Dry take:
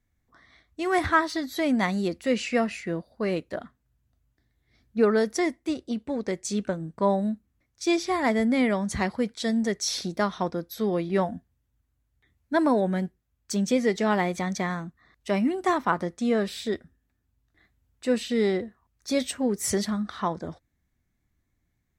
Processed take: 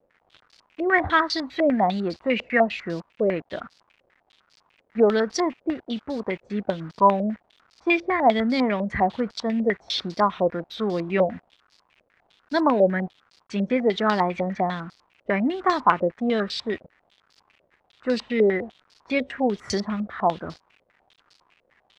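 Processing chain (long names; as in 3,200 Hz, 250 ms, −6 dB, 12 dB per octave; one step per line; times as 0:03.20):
surface crackle 540 per second −46 dBFS
bit reduction 8 bits
low-pass on a step sequencer 10 Hz 550–4,700 Hz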